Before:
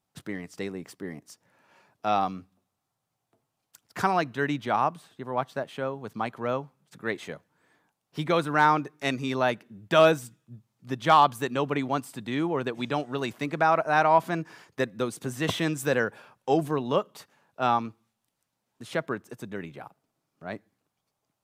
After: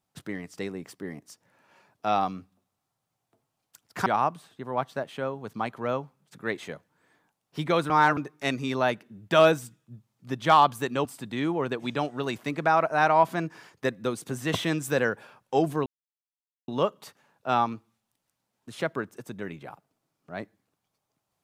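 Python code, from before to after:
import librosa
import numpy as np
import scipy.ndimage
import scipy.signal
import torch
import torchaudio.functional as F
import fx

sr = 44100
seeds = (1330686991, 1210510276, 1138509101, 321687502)

y = fx.edit(x, sr, fx.cut(start_s=4.06, length_s=0.6),
    fx.reverse_span(start_s=8.5, length_s=0.27),
    fx.cut(start_s=11.65, length_s=0.35),
    fx.insert_silence(at_s=16.81, length_s=0.82), tone=tone)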